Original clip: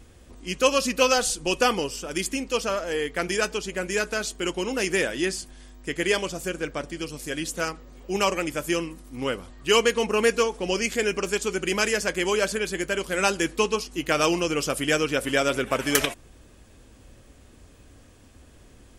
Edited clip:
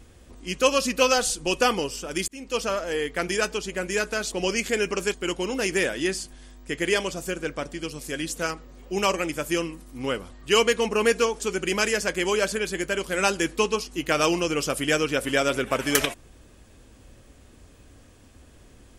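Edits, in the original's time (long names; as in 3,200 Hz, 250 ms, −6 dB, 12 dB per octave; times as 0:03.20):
0:02.28–0:02.60: fade in
0:10.58–0:11.40: move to 0:04.32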